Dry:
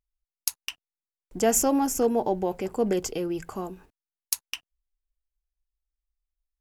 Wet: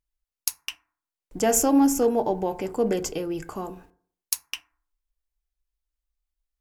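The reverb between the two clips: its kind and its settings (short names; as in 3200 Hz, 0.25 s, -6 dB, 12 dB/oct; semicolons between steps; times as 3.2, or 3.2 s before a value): FDN reverb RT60 0.53 s, low-frequency decay 1×, high-frequency decay 0.35×, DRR 10 dB; gain +1 dB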